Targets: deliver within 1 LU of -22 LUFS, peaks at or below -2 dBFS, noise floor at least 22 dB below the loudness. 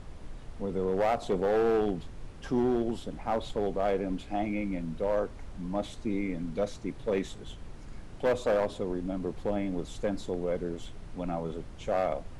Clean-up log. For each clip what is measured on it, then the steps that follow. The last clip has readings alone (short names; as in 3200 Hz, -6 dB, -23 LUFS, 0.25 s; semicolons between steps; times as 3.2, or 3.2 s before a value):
clipped 1.2%; flat tops at -21.0 dBFS; noise floor -45 dBFS; noise floor target -54 dBFS; loudness -31.5 LUFS; peak -21.0 dBFS; loudness target -22.0 LUFS
-> clip repair -21 dBFS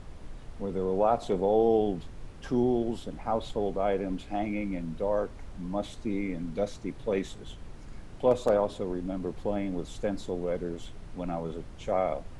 clipped 0.0%; noise floor -45 dBFS; noise floor target -53 dBFS
-> noise print and reduce 8 dB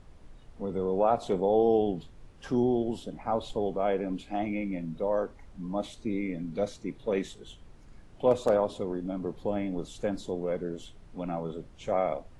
noise floor -52 dBFS; noise floor target -53 dBFS
-> noise print and reduce 6 dB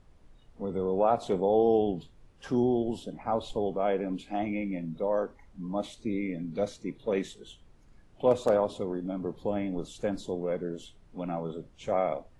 noise floor -58 dBFS; loudness -30.5 LUFS; peak -12.0 dBFS; loudness target -22.0 LUFS
-> gain +8.5 dB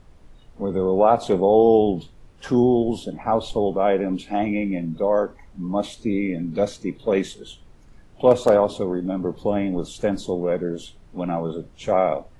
loudness -22.0 LUFS; peak -3.5 dBFS; noise floor -49 dBFS